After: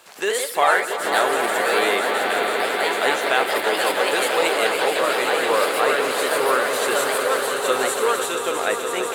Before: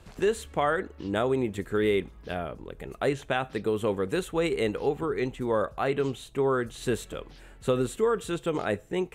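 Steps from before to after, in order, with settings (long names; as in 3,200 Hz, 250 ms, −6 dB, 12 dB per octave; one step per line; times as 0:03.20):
high-pass filter 670 Hz 12 dB per octave
high-shelf EQ 9,600 Hz +10 dB
bit reduction 12 bits
echo that builds up and dies away 164 ms, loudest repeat 5, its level −9 dB
delay with pitch and tempo change per echo 104 ms, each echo +2 semitones, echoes 2
level +9 dB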